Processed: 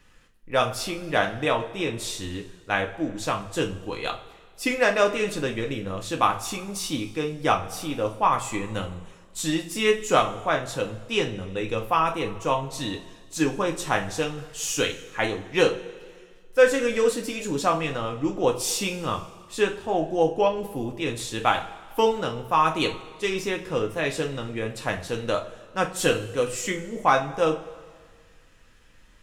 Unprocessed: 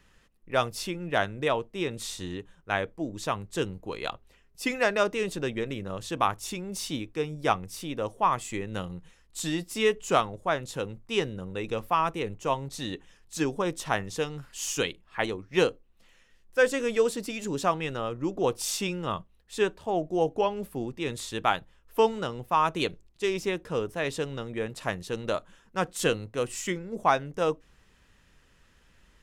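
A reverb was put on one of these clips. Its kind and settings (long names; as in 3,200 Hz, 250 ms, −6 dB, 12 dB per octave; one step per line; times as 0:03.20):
coupled-rooms reverb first 0.29 s, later 1.8 s, from −18 dB, DRR 1.5 dB
level +2 dB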